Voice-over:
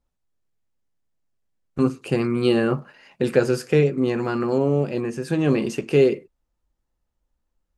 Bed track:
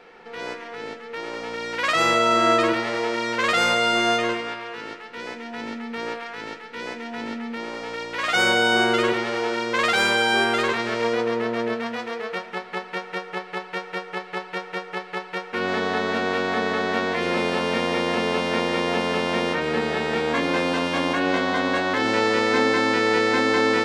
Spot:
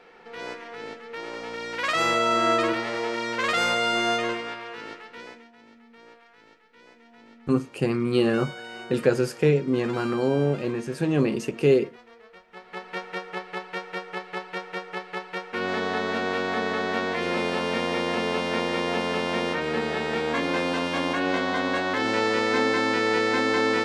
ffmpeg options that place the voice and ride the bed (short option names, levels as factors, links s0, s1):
-filter_complex "[0:a]adelay=5700,volume=0.75[s0];[1:a]volume=5.01,afade=t=out:st=5.01:d=0.51:silence=0.141254,afade=t=in:st=12.48:d=0.5:silence=0.133352[s1];[s0][s1]amix=inputs=2:normalize=0"